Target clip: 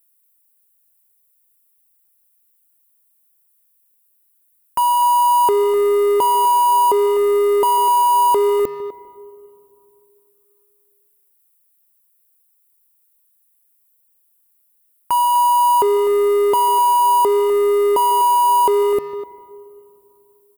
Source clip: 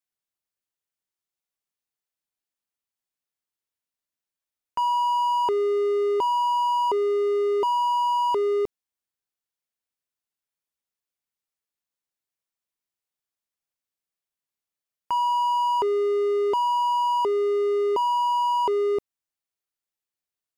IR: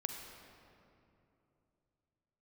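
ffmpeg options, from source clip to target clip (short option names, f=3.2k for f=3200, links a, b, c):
-filter_complex "[0:a]asplit=2[a][b];[1:a]atrim=start_sample=2205,lowpass=2.9k,adelay=148[c];[b][c]afir=irnorm=-1:irlink=0,volume=-15.5dB[d];[a][d]amix=inputs=2:normalize=0,aeval=exprs='0.15*(cos(1*acos(clip(val(0)/0.15,-1,1)))-cos(1*PI/2))+0.00106*(cos(5*acos(clip(val(0)/0.15,-1,1)))-cos(5*PI/2))+0.00106*(cos(6*acos(clip(val(0)/0.15,-1,1)))-cos(6*PI/2))':c=same,aexciter=amount=8.9:drive=6.9:freq=8.4k,asplit=2[e][f];[f]adelay=250,highpass=300,lowpass=3.4k,asoftclip=type=hard:threshold=-25dB,volume=-11dB[g];[e][g]amix=inputs=2:normalize=0,volume=7.5dB"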